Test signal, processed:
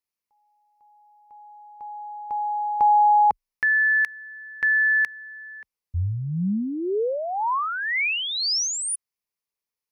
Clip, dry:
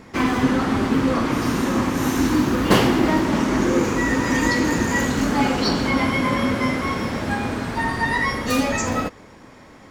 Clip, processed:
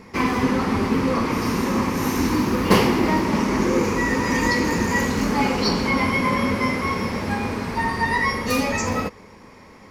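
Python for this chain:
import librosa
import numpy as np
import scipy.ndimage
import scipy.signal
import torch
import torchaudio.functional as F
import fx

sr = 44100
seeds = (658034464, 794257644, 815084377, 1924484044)

y = fx.ripple_eq(x, sr, per_octave=0.85, db=6)
y = y * librosa.db_to_amplitude(-1.0)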